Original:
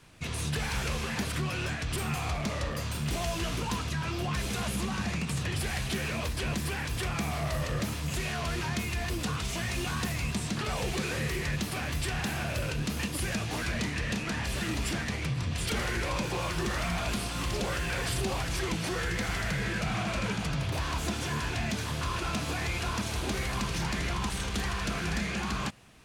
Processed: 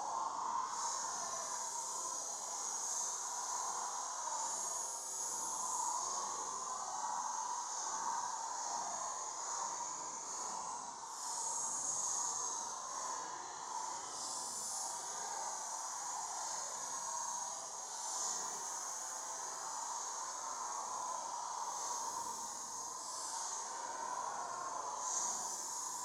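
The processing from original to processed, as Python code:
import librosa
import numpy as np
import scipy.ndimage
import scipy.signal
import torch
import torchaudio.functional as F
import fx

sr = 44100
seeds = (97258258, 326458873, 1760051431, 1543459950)

y = fx.spec_clip(x, sr, under_db=18)
y = fx.double_bandpass(y, sr, hz=2500.0, octaves=2.8)
y = fx.paulstretch(y, sr, seeds[0], factor=11.0, window_s=0.05, from_s=4.27)
y = F.gain(torch.from_numpy(y), 2.0).numpy()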